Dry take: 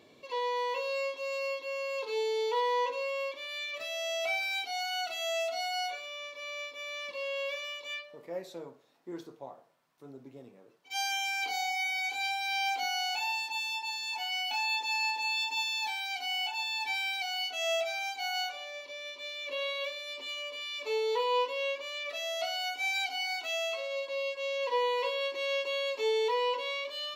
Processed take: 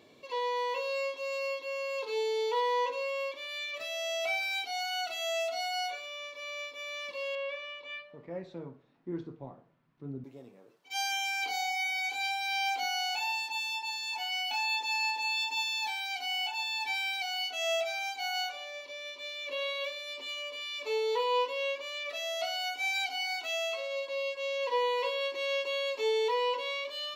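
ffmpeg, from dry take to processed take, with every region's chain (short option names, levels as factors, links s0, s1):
-filter_complex "[0:a]asettb=1/sr,asplit=3[s0][s1][s2];[s0]atrim=end=7.354[s3];[s1]atrim=start=7.35:end=10.24,asetpts=PTS-STARTPTS,afade=t=in:d=0.004:c=qsin,afade=t=out:st=2.886:d=0.004:c=qsin,lowpass=2600,asubboost=boost=10:cutoff=240[s4];[s2]atrim=start=10.236[s5];[s3][s4]acrossfade=d=0.004:c1=hsin:c2=qsin[s6];[s6][s5]acrossfade=d=0.004:c1=qsin:c2=hsin"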